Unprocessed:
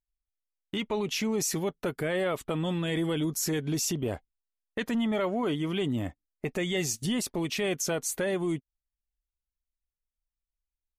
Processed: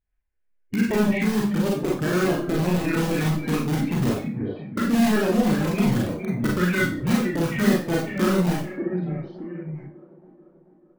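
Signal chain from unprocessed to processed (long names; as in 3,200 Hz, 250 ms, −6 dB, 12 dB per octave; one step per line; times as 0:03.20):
spectral magnitudes quantised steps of 30 dB
delay with pitch and tempo change per echo 103 ms, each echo −1 semitone, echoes 2, each echo −6 dB
low-pass filter 2,700 Hz 24 dB per octave
parametric band 1,300 Hz −13.5 dB 0.64 octaves
in parallel at −7 dB: wrap-around overflow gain 25 dB
on the sum: formants moved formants −5 semitones
reverb reduction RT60 1.3 s
on a send: delay with a band-pass on its return 437 ms, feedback 56%, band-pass 460 Hz, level −14.5 dB
on the sum: four-comb reverb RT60 0.36 s, combs from 30 ms, DRR −2.5 dB
level +5 dB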